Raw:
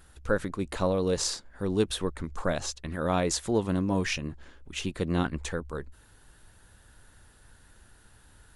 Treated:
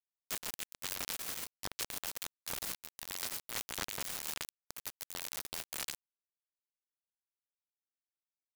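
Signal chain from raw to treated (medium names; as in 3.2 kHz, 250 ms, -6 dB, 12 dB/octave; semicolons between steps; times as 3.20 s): in parallel at -3 dB: upward compressor, threshold -30 dBFS; on the sum: gated-style reverb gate 190 ms rising, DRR 6 dB; dynamic bell 820 Hz, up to +6 dB, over -36 dBFS, Q 0.73; reverse; compression 12:1, threshold -32 dBFS, peak gain reduction 20 dB; reverse; integer overflow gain 29 dB; bit crusher 5-bit; trim -2 dB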